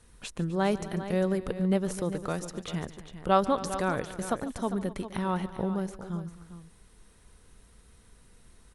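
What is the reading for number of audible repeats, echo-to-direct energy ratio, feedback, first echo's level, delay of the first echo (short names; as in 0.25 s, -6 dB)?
3, -10.0 dB, no steady repeat, -17.0 dB, 0.144 s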